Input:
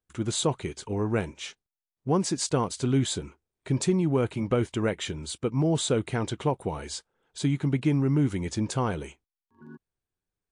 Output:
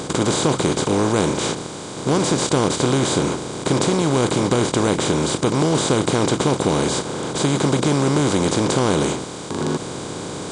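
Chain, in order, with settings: per-bin compression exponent 0.2

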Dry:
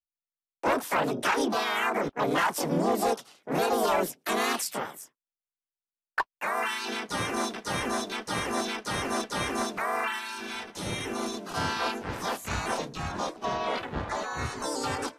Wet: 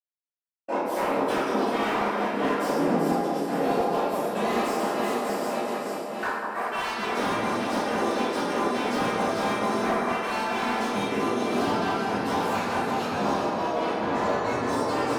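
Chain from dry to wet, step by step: regenerating reverse delay 0.295 s, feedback 73%, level -11 dB; gate with hold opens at -36 dBFS; HPF 370 Hz 12 dB/oct; low shelf 480 Hz +10.5 dB; compressor 10:1, threshold -32 dBFS, peak gain reduction 14.5 dB; step gate "xxx.x.xx.x" 171 bpm; echo with dull and thin repeats by turns 0.191 s, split 1400 Hz, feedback 62%, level -5 dB; reverb RT60 1.3 s, pre-delay 46 ms; slew limiter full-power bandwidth 85 Hz

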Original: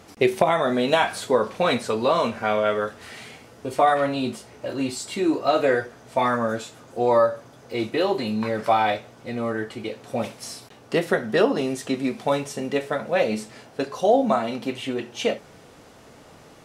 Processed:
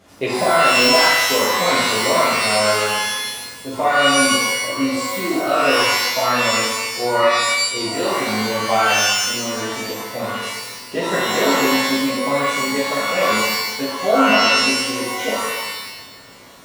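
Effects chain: shimmer reverb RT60 1 s, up +12 st, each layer -2 dB, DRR -7.5 dB; gain -6.5 dB

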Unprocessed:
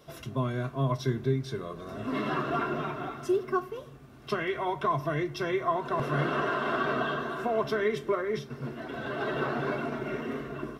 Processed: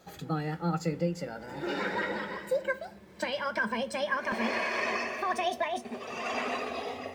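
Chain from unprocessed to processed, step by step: speed glide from 120% -> 182%; gain -2 dB

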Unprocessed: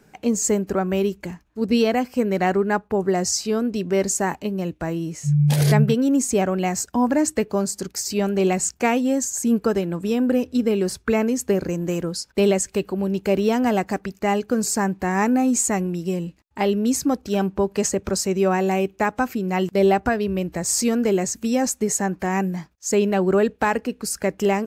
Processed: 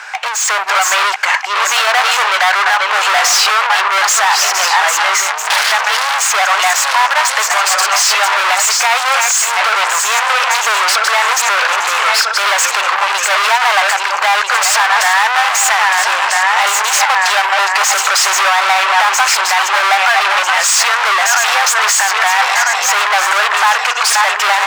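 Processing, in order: regenerating reverse delay 0.647 s, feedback 54%, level -9 dB; LPF 8100 Hz 12 dB/oct; overdrive pedal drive 39 dB, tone 1700 Hz, clips at -5.5 dBFS; AGC; inverse Chebyshev high-pass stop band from 280 Hz, stop band 60 dB; maximiser +6.5 dB; gain -1 dB

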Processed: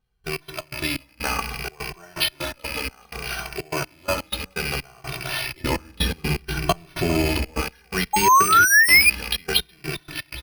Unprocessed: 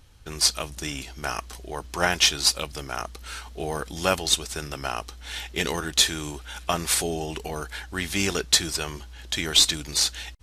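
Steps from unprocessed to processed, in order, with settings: rattling part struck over -40 dBFS, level -22 dBFS; compressor, threshold -23 dBFS, peak gain reduction 10 dB; echo with dull and thin repeats by turns 0.403 s, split 1800 Hz, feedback 55%, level -10.5 dB; reverb RT60 1.4 s, pre-delay 4 ms, DRR 6.5 dB; step gate "..x.x.xx..xxxx.x" 125 bpm -24 dB; 8.13–9.1 painted sound rise 830–2500 Hz -20 dBFS; dynamic EQ 2800 Hz, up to +3 dB, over -37 dBFS, Q 1.3; careless resampling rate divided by 6×, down filtered, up hold; 5.6–7.61 low shelf 300 Hz +11 dB; endless flanger 2.1 ms -0.63 Hz; gain +7.5 dB

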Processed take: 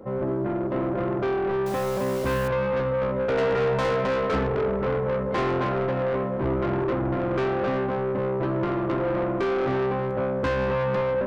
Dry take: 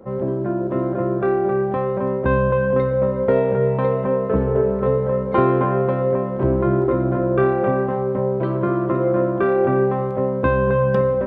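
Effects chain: 1.66–2.48 companded quantiser 4-bit; 3.38–4.47 bell 1600 Hz +11.5 dB 1.6 oct; soft clip -21 dBFS, distortion -9 dB; FDN reverb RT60 0.31 s, high-frequency decay 0.55×, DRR 13 dB

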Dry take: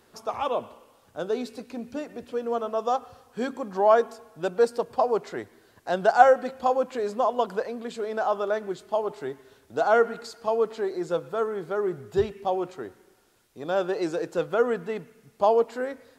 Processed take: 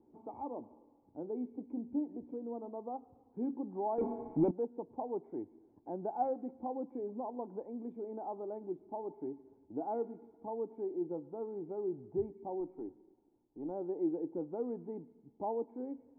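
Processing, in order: 12.6–13.71 half-wave gain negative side -3 dB; in parallel at +0.5 dB: compressor, threshold -36 dBFS, peak gain reduction 24 dB; 3.98–4.51 on the sum: sample leveller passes 5; vocal tract filter u; gain -2 dB

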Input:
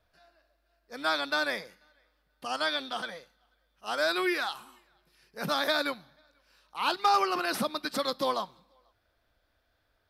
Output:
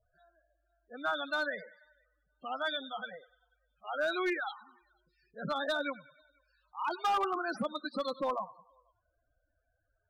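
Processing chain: thinning echo 98 ms, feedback 51%, high-pass 530 Hz, level -17 dB; loudest bins only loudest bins 16; hard clip -22.5 dBFS, distortion -15 dB; gain -3 dB

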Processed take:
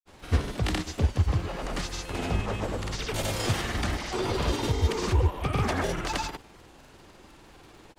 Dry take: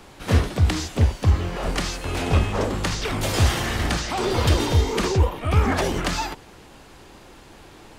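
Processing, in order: crackle 73/s -41 dBFS; grains, pitch spread up and down by 0 st; gain -4.5 dB

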